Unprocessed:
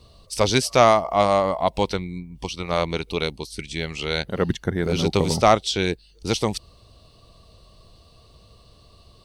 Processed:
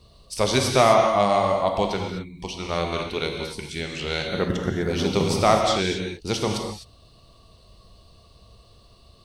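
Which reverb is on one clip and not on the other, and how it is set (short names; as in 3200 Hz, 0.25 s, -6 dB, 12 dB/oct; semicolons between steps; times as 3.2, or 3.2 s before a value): non-linear reverb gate 0.28 s flat, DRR 1.5 dB; gain -3 dB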